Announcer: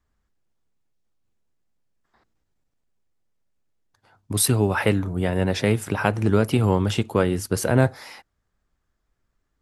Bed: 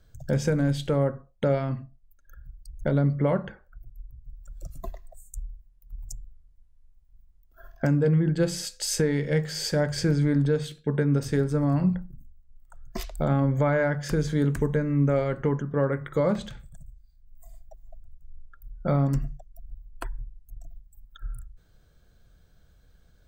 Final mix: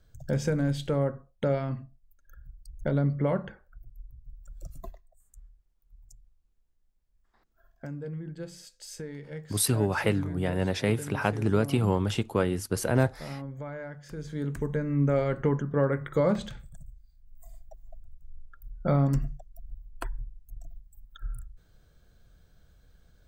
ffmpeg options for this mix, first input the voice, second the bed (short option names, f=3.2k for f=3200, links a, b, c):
-filter_complex "[0:a]adelay=5200,volume=-5.5dB[a];[1:a]volume=12dB,afade=t=out:st=4.77:d=0.26:silence=0.237137,afade=t=in:st=14.11:d=1.19:silence=0.177828[b];[a][b]amix=inputs=2:normalize=0"